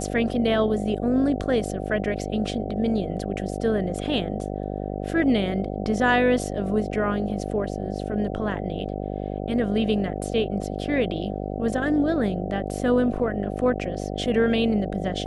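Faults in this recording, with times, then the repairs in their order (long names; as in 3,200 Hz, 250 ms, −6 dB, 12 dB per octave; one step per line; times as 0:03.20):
mains buzz 50 Hz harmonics 15 −30 dBFS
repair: hum removal 50 Hz, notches 15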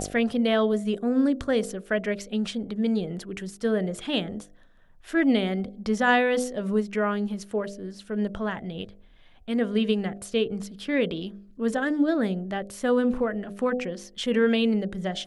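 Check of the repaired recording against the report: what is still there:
none of them is left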